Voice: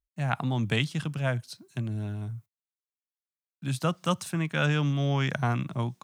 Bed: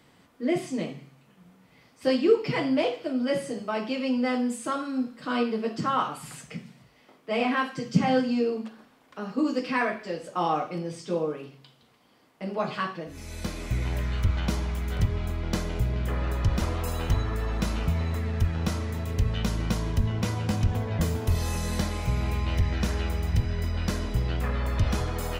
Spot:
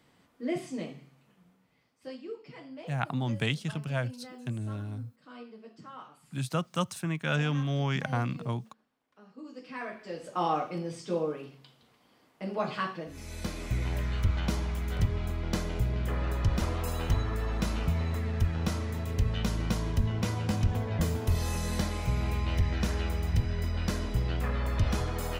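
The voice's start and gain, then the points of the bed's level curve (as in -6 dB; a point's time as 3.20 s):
2.70 s, -3.0 dB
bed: 1.31 s -6 dB
2.24 s -20.5 dB
9.43 s -20.5 dB
10.30 s -2.5 dB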